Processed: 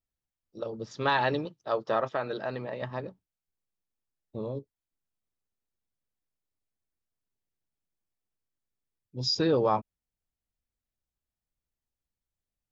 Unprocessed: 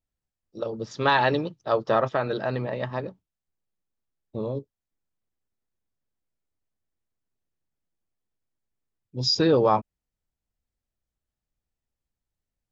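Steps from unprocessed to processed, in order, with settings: 1.45–2.82 s: bass shelf 140 Hz -10 dB; trim -5 dB

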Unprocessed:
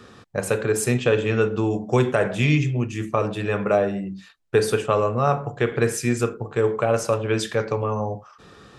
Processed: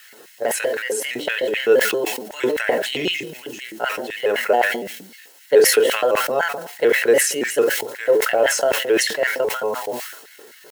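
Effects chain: pitch shift switched off and on +3 st, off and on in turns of 76 ms; dynamic bell 380 Hz, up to -3 dB, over -39 dBFS, Q 4.6; word length cut 8-bit, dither triangular; tempo 0.82×; LFO high-pass square 3.9 Hz 410–2000 Hz; comb of notches 1.2 kHz; decay stretcher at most 62 dB/s

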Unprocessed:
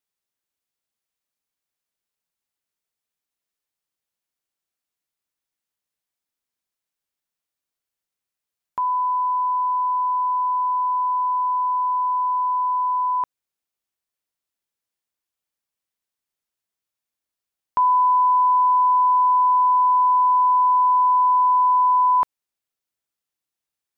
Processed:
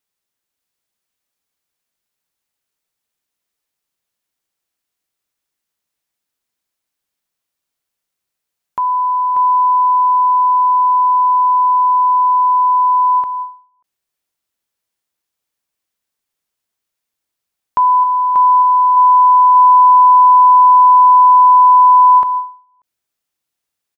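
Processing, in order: 18.03–18.97 s: dynamic bell 980 Hz, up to -4 dB, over -27 dBFS, Q 5.8; delay 587 ms -5.5 dB; endings held to a fixed fall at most 140 dB/s; trim +6 dB

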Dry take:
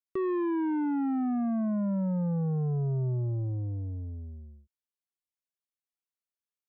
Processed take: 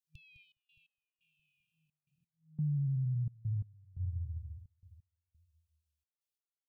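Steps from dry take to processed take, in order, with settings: FFT band-reject 160–2400 Hz; feedback delay 207 ms, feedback 59%, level -12 dB; peak limiter -31 dBFS, peak gain reduction 8 dB; trance gate "xxx.x..x" 87 bpm -24 dB; dynamic bell 220 Hz, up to +4 dB, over -49 dBFS, Q 0.89

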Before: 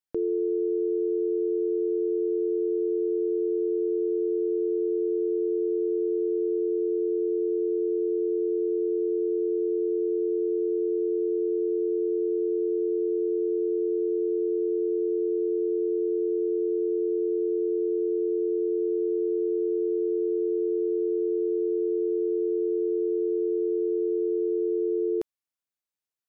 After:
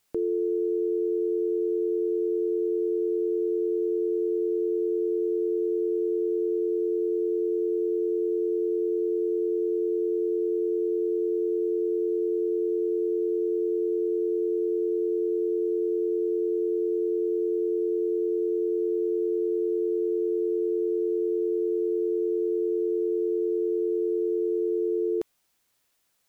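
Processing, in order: word length cut 12-bit, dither triangular

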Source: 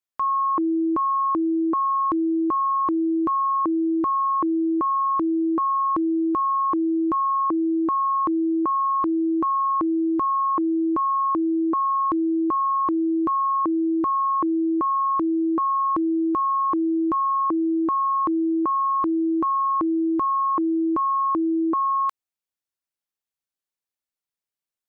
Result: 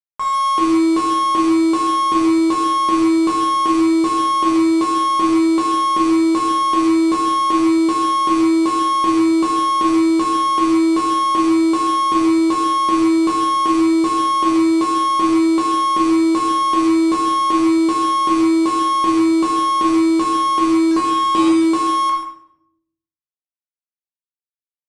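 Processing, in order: 20.91–21.48 s: bass shelf 460 Hz +3.5 dB; delay 134 ms -11 dB; companded quantiser 4-bit; simulated room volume 160 m³, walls mixed, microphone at 1.3 m; Chebyshev shaper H 6 -33 dB, 8 -27 dB, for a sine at -4.5 dBFS; resampled via 22.05 kHz

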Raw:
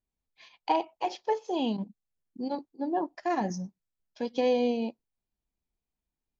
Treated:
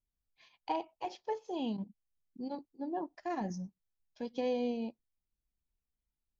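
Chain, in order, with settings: bass shelf 140 Hz +11 dB; trim -9 dB

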